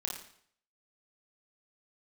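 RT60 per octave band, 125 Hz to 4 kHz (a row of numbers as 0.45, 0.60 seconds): 0.60, 0.60, 0.60, 0.60, 0.60, 0.60 seconds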